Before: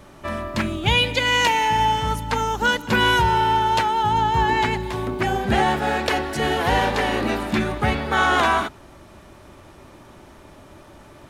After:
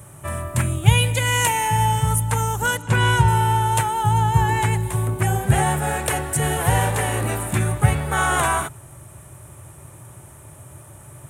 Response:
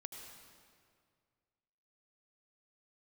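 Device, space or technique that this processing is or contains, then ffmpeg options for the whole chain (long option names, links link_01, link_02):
budget condenser microphone: -filter_complex "[0:a]highpass=94,highshelf=frequency=6600:width_type=q:width=3:gain=12.5,asettb=1/sr,asplit=3[link_01][link_02][link_03];[link_01]atrim=end=2.774[link_04];[link_02]atrim=start=2.77:end=3.28,asetpts=PTS-STARTPTS,afade=type=in:duration=0.004:curve=qsin,afade=type=out:start_time=0.506:duration=0.004:curve=qsin,lowpass=6400[link_05];[link_03]atrim=start=3.276[link_06];[link_04][link_05]acrossfade=duration=0.004:curve1=hsin:curve2=qsin[link_07];[link_07][link_06]acrossfade=duration=0.004:curve1=qsin:curve2=hsin,lowshelf=frequency=170:width_type=q:width=3:gain=9,volume=-1.5dB"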